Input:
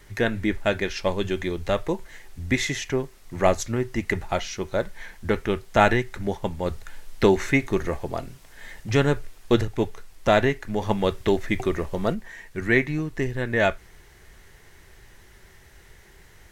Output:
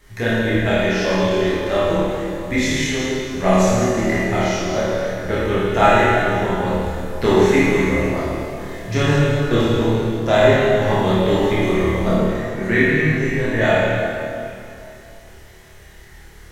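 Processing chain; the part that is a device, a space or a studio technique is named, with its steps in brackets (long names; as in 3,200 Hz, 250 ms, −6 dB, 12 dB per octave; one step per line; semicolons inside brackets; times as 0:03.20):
tunnel (flutter between parallel walls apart 4.6 metres, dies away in 0.41 s; convolution reverb RT60 2.7 s, pre-delay 9 ms, DRR −8 dB)
level −3.5 dB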